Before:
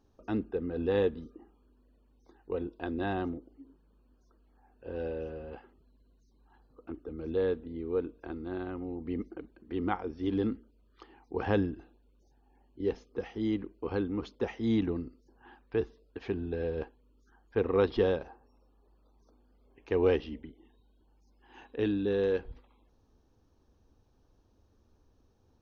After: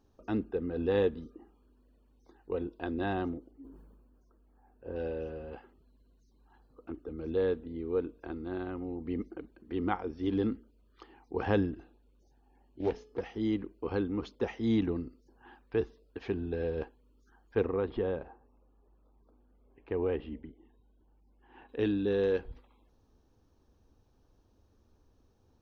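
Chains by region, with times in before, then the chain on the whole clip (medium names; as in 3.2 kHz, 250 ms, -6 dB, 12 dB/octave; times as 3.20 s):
3.51–4.96 s: peaking EQ 3.8 kHz -10.5 dB 1.8 oct + decay stretcher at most 34 dB/s
11.73–13.21 s: de-hum 428.3 Hz, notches 31 + loudspeaker Doppler distortion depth 0.27 ms
17.66–21.69 s: compression 2:1, threshold -29 dBFS + distance through air 420 m
whole clip: none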